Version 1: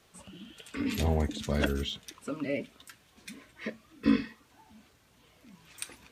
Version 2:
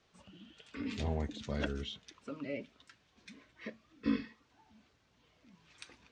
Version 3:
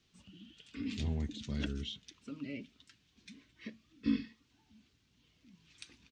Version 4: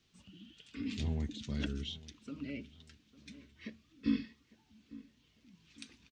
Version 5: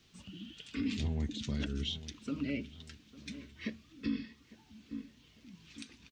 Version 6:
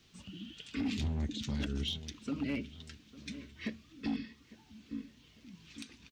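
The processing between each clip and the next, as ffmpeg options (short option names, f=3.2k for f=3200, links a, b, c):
-af "lowpass=f=6.3k:w=0.5412,lowpass=f=6.3k:w=1.3066,volume=-7.5dB"
-af "firequalizer=gain_entry='entry(270,0);entry(550,-14);entry(2900,0)':delay=0.05:min_phase=1,volume=1dB"
-filter_complex "[0:a]asplit=2[a][b];[b]adelay=852,lowpass=f=1.7k:p=1,volume=-18.5dB,asplit=2[c][d];[d]adelay=852,lowpass=f=1.7k:p=1,volume=0.42,asplit=2[e][f];[f]adelay=852,lowpass=f=1.7k:p=1,volume=0.42[g];[a][c][e][g]amix=inputs=4:normalize=0"
-af "alimiter=level_in=9dB:limit=-24dB:level=0:latency=1:release=319,volume=-9dB,volume=7.5dB"
-af "asoftclip=type=hard:threshold=-30dB,volume=1dB"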